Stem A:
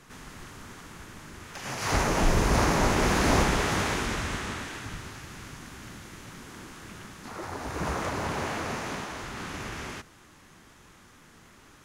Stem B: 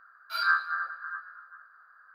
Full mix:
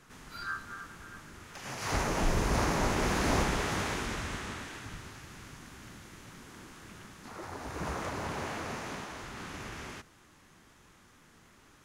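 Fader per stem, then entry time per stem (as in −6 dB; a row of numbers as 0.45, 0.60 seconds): −5.5, −13.0 decibels; 0.00, 0.00 seconds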